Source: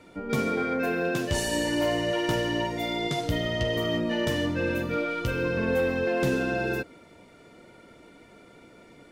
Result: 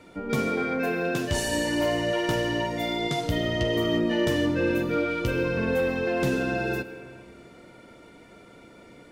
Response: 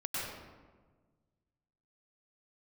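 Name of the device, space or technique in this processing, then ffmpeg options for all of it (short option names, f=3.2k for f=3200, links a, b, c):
ducked reverb: -filter_complex "[0:a]asplit=3[a][b][c];[1:a]atrim=start_sample=2205[d];[b][d]afir=irnorm=-1:irlink=0[e];[c]apad=whole_len=402097[f];[e][f]sidechaincompress=threshold=-29dB:ratio=8:attack=16:release=987,volume=-11dB[g];[a][g]amix=inputs=2:normalize=0,asettb=1/sr,asplit=3[h][i][j];[h]atrim=end=3.364[k];[i]atrim=start=3.36:end=5.43,asetpts=PTS-STARTPTS,afade=t=in:d=0.004:c=qsin,afade=t=out:st=2.066:d=0.004:c=qsin,equalizer=f=340:t=o:w=0.6:g=6[l];[j]atrim=start=5.426[m];[k][l]acrossfade=d=0.004:c1=hsin:c2=qsin[n];[n][m]acrossfade=d=0.004:c1=qsin:c2=hsin"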